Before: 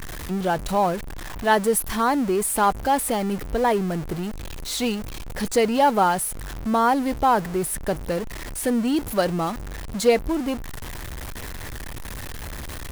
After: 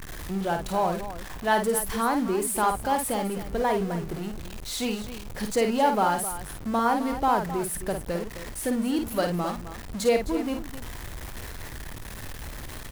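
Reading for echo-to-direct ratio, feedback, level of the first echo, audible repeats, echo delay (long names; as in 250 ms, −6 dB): −5.0 dB, repeats not evenly spaced, −6.0 dB, 2, 52 ms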